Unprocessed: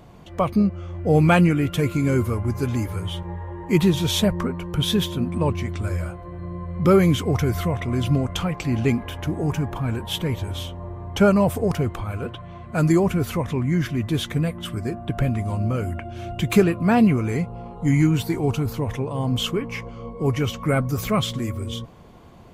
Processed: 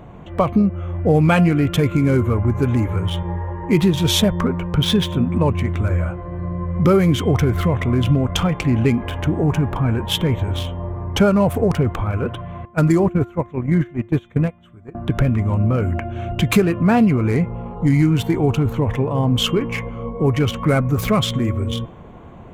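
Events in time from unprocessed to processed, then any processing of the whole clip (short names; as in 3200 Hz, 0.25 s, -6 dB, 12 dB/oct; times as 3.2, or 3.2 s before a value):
4.61–5.06 decimation joined by straight lines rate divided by 3×
12.65–14.95 gate -22 dBFS, range -23 dB
whole clip: Wiener smoothing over 9 samples; de-hum 349.7 Hz, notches 10; compressor 2.5:1, threshold -21 dBFS; gain +7.5 dB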